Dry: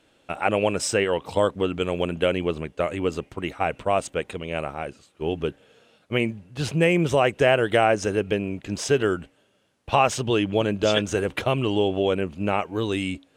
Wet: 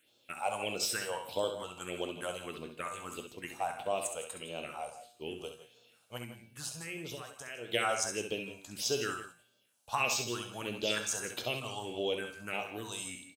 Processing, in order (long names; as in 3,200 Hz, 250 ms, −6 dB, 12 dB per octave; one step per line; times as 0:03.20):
RIAA equalisation recording
0:06.17–0:07.72: downward compressor 12 to 1, threshold −27 dBFS, peak gain reduction 14 dB
all-pass phaser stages 4, 1.6 Hz, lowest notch 290–2,000 Hz
tuned comb filter 120 Hz, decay 0.53 s, harmonics all, mix 70%
multi-tap delay 66/156/174 ms −7.5/−14.5/−15.5 dB